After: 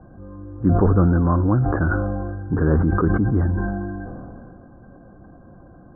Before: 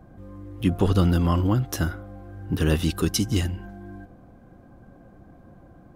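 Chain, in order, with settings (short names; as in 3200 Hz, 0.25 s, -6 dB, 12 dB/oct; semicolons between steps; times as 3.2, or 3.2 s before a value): Chebyshev low-pass 1600 Hz, order 6; sustainer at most 22 dB/s; gain +3.5 dB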